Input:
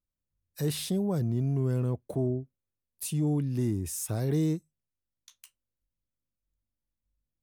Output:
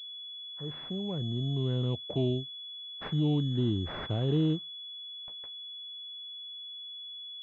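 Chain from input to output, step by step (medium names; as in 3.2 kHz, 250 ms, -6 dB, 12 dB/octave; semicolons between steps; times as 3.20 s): fade-in on the opening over 2.23 s; class-D stage that switches slowly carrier 3.4 kHz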